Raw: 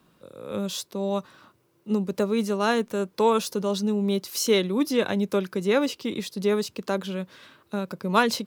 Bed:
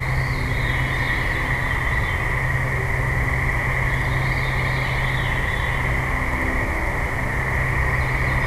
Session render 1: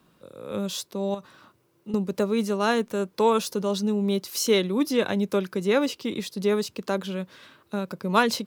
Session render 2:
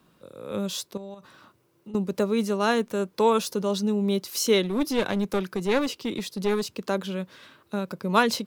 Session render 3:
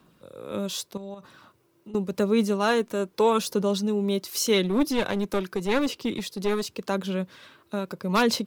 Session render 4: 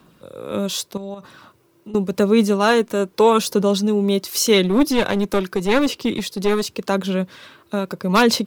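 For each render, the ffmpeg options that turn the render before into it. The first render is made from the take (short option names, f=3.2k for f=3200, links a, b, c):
-filter_complex "[0:a]asettb=1/sr,asplit=3[a][b][c];[a]atrim=end=1.144[d];[b]atrim=start=1.14:end=1.94,asetpts=PTS-STARTPTS,afade=t=in:d=0.004:c=qsin,afade=t=out:st=0.796:d=0.004:c=qsin,acompressor=threshold=-30dB:ratio=12:attack=3.2:release=140:knee=1:detection=peak[e];[c]atrim=start=1.936[f];[d][e]acrossfade=d=0.004:c1=hsin:c2=qsin[g];[g][f]acrossfade=d=0.004:c1=qsin:c2=hsin"
-filter_complex "[0:a]asettb=1/sr,asplit=3[a][b][c];[a]atrim=end=0.974[d];[b]atrim=start=0.97:end=1.95,asetpts=PTS-STARTPTS,afade=t=in:d=0.004:c=qsin,afade=t=out:st=0.976:d=0.004:c=qsin,acompressor=threshold=-38dB:ratio=4:attack=3.2:release=140:knee=1:detection=peak[e];[c]atrim=start=1.946[f];[d][e]acrossfade=d=0.004:c1=hsin:c2=qsin[g];[g][f]acrossfade=d=0.004:c1=qsin:c2=hsin,asettb=1/sr,asplit=3[h][i][j];[h]atrim=end=4.624[k];[i]atrim=start=4.62:end=6.65,asetpts=PTS-STARTPTS,afade=t=in:d=0.004:c=qsin,afade=t=out:st=2.026:d=0.004:c=qsin,aeval=exprs='clip(val(0),-1,0.0562)':c=same[l];[j]atrim=start=6.646[m];[k][l]acrossfade=d=0.004:c1=hsin:c2=qsin[n];[n][m]acrossfade=d=0.004:c1=qsin:c2=hsin"
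-af "aphaser=in_gain=1:out_gain=1:delay=3.2:decay=0.28:speed=0.84:type=sinusoidal,aeval=exprs='0.282*(abs(mod(val(0)/0.282+3,4)-2)-1)':c=same"
-af "volume=7dB"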